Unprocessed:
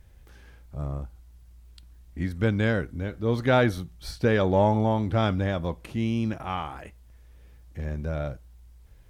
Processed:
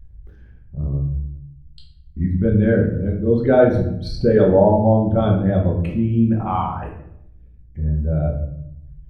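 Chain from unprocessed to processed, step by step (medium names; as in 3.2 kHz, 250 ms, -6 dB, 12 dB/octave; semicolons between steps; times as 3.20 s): resonances exaggerated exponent 2; in parallel at -2 dB: peak limiter -21 dBFS, peak gain reduction 9.5 dB; on the sum: reverberation RT60 0.75 s, pre-delay 5 ms, DRR -1 dB; trim +1 dB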